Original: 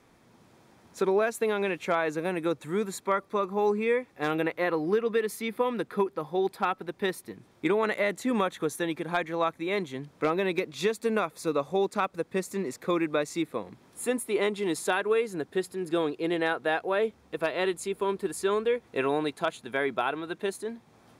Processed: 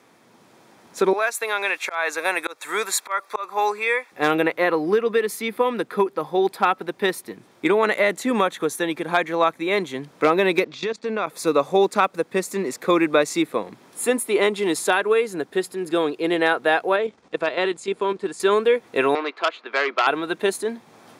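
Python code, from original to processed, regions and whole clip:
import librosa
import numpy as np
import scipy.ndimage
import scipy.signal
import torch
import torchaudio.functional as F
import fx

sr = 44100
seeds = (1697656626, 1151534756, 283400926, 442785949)

y = fx.chain(x, sr, fx.highpass(hz=900.0, slope=12),
    fx.auto_swell(attack_ms=226.0),
    fx.notch(hz=3000.0, q=8.8), at=(1.13, 4.12))
y = fx.chain(y, sr, fx.lowpass(hz=5900.0, slope=24),
    fx.level_steps(step_db=16), at=(10.64, 11.27))
y = fx.chain(y, sr, fx.lowpass(hz=8000.0, slope=24),
    fx.level_steps(step_db=10), at=(16.96, 18.4))
y = fx.chain(y, sr, fx.cabinet(low_hz=350.0, low_slope=24, high_hz=4000.0, hz=(440.0, 810.0, 1200.0, 2200.0, 3500.0), db=(-3, -4, 7, 3, -4)),
    fx.transformer_sat(knee_hz=2400.0), at=(19.15, 20.07))
y = scipy.signal.sosfilt(scipy.signal.butter(2, 110.0, 'highpass', fs=sr, output='sos'), y)
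y = fx.low_shelf(y, sr, hz=160.0, db=-11.0)
y = fx.rider(y, sr, range_db=10, speed_s=2.0)
y = y * librosa.db_to_amplitude(8.5)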